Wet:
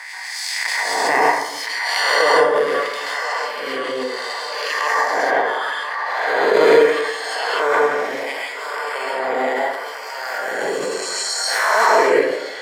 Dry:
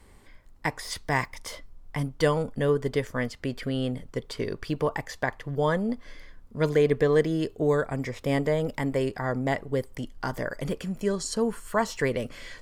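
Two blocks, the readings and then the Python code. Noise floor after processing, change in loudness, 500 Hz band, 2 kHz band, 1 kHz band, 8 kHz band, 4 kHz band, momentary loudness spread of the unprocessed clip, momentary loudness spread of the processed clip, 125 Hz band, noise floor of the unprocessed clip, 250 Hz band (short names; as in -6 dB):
-30 dBFS, +9.5 dB, +8.5 dB, +15.0 dB, +15.5 dB, +13.0 dB, +15.5 dB, 11 LU, 11 LU, under -15 dB, -52 dBFS, -2.5 dB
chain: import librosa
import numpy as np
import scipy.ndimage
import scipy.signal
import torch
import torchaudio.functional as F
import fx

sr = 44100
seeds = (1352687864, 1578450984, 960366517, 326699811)

p1 = fx.spec_swells(x, sr, rise_s=2.64)
p2 = fx.dereverb_blind(p1, sr, rt60_s=0.62)
p3 = scipy.signal.sosfilt(scipy.signal.butter(2, 190.0, 'highpass', fs=sr, output='sos'), p2)
p4 = fx.peak_eq(p3, sr, hz=4300.0, db=6.0, octaves=0.2)
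p5 = fx.level_steps(p4, sr, step_db=24)
p6 = p4 + (p5 * 10.0 ** (2.0 / 20.0))
p7 = np.clip(p6, -10.0 ** (-4.5 / 20.0), 10.0 ** (-4.5 / 20.0))
p8 = fx.filter_lfo_highpass(p7, sr, shape='sine', hz=0.73, low_hz=370.0, high_hz=4900.0, q=1.4)
p9 = fx.echo_wet_bandpass(p8, sr, ms=1018, feedback_pct=54, hz=1400.0, wet_db=-6.0)
p10 = fx.rev_plate(p9, sr, seeds[0], rt60_s=0.84, hf_ratio=0.45, predelay_ms=120, drr_db=-5.0)
p11 = fx.pre_swell(p10, sr, db_per_s=21.0)
y = p11 * 10.0 ** (-4.0 / 20.0)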